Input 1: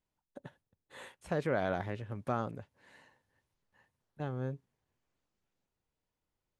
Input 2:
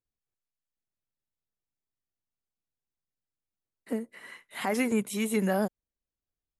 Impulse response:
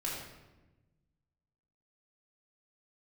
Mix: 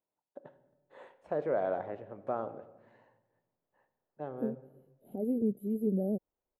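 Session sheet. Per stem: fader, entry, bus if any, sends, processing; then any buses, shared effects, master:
+1.5 dB, 0.00 s, send −12.5 dB, resonant band-pass 570 Hz, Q 1.3
−2.5 dB, 0.50 s, no send, inverse Chebyshev band-stop filter 1,000–9,300 Hz, stop band 40 dB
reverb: on, RT60 1.1 s, pre-delay 3 ms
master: no processing

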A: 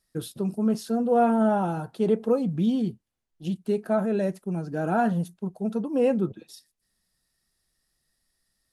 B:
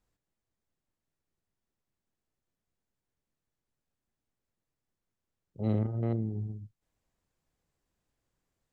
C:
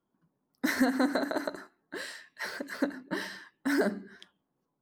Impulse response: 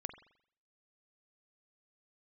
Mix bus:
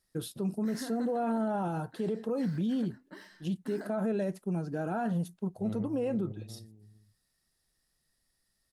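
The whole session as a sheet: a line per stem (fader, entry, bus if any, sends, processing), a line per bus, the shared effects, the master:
−2.5 dB, 0.00 s, no send, no echo send, no processing
−9.5 dB, 0.00 s, no send, echo send −12.5 dB, no processing
−15.0 dB, 0.00 s, no send, no echo send, no processing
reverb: not used
echo: single-tap delay 458 ms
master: brickwall limiter −24.5 dBFS, peak gain reduction 10 dB

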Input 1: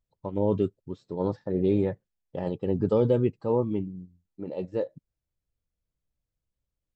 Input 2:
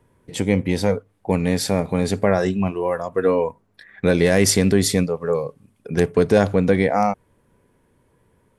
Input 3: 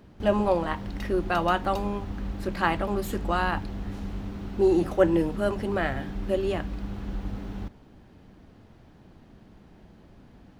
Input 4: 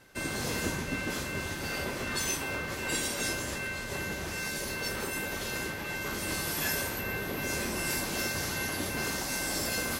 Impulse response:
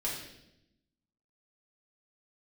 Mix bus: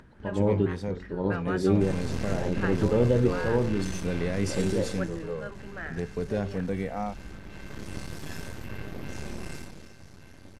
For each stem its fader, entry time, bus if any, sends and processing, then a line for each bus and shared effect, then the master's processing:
−1.5 dB, 0.00 s, no send, hum removal 45.38 Hz, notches 34
−14.5 dB, 0.00 s, no send, harmonic and percussive parts rebalanced percussive −4 dB
−18.0 dB, 0.00 s, no send, parametric band 1,600 Hz +13.5 dB 0.73 octaves
0:04.74 −4.5 dB → 0:05.33 −14.5 dB → 0:07.17 −14.5 dB → 0:07.84 −7.5 dB → 0:09.52 −7.5 dB → 0:09.93 −20.5 dB, 1.65 s, no send, low-shelf EQ 380 Hz +10.5 dB; half-wave rectification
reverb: not used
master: low-pass filter 8,300 Hz 12 dB per octave; low-shelf EQ 230 Hz +5.5 dB; upward compression, threshold −44 dBFS

